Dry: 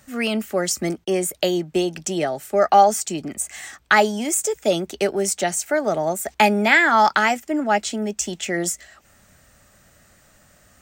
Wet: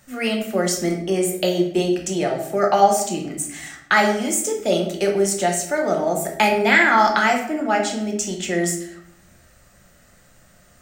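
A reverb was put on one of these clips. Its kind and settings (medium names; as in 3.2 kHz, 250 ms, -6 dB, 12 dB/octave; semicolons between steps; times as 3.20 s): simulated room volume 170 m³, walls mixed, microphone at 0.89 m; trim -2 dB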